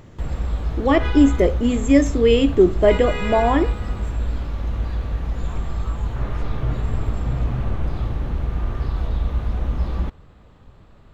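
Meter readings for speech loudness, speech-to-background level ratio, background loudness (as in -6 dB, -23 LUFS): -18.0 LUFS, 8.0 dB, -26.0 LUFS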